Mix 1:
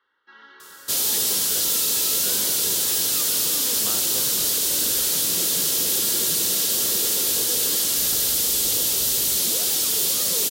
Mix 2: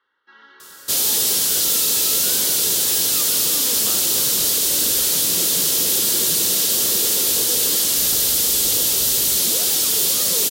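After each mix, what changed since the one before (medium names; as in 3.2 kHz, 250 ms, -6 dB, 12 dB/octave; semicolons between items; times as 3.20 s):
second sound +3.5 dB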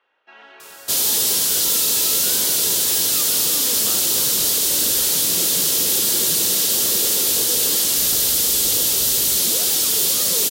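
first sound: remove static phaser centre 2.5 kHz, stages 6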